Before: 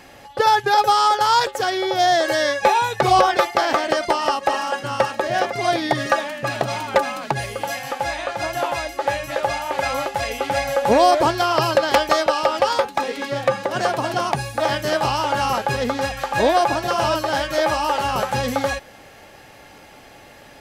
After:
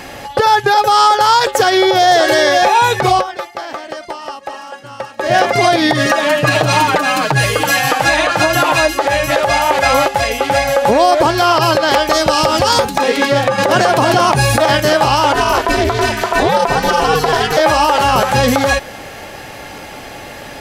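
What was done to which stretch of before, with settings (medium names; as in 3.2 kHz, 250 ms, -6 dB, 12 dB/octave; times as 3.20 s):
1.45–2.12 s: echo throw 560 ms, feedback 15%, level -5.5 dB
3.01–5.40 s: dip -20.5 dB, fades 0.23 s
6.22–9.00 s: comb 6.5 ms, depth 86%
10.08–11.05 s: gain -5 dB
12.13–12.98 s: tone controls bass +14 dB, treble +8 dB
13.58–14.80 s: level flattener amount 50%
15.33–17.57 s: ring modulator 160 Hz
whole clip: compression, threshold -20 dBFS; loudness maximiser +15 dB; trim -1 dB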